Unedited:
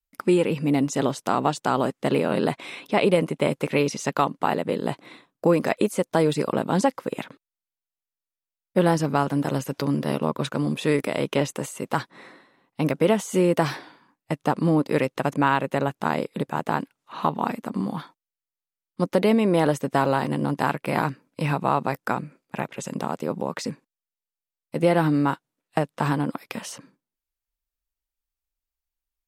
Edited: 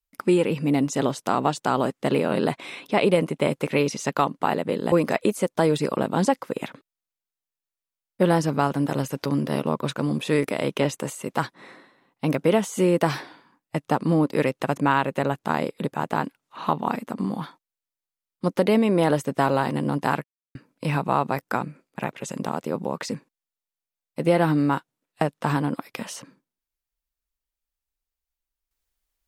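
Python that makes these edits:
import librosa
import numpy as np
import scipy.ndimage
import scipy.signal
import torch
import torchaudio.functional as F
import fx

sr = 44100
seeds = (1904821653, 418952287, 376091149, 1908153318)

y = fx.edit(x, sr, fx.cut(start_s=4.92, length_s=0.56),
    fx.silence(start_s=20.8, length_s=0.31), tone=tone)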